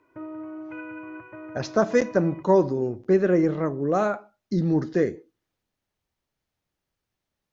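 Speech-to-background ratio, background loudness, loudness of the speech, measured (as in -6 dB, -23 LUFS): 16.5 dB, -40.0 LUFS, -23.5 LUFS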